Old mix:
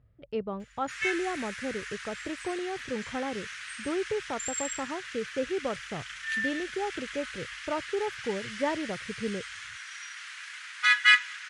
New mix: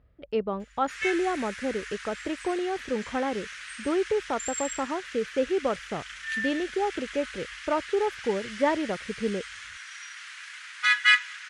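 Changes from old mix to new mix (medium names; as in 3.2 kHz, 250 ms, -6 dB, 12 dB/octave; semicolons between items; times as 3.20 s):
speech +5.5 dB; master: add peaking EQ 120 Hz -12.5 dB 0.73 oct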